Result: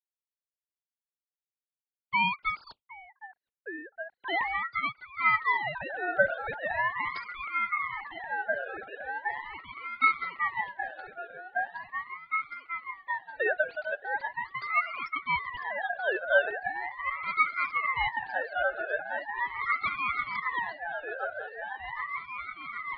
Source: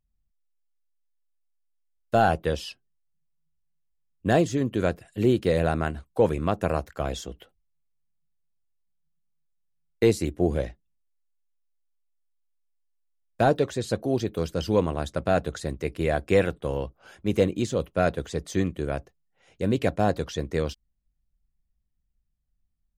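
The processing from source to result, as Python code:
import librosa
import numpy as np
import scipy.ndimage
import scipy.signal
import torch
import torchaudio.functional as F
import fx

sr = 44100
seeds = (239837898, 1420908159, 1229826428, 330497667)

y = fx.sine_speech(x, sr)
y = fx.echo_opening(y, sr, ms=766, hz=200, octaves=1, feedback_pct=70, wet_db=0)
y = fx.ring_lfo(y, sr, carrier_hz=1400.0, swing_pct=25, hz=0.4)
y = F.gain(torch.from_numpy(y), -3.5).numpy()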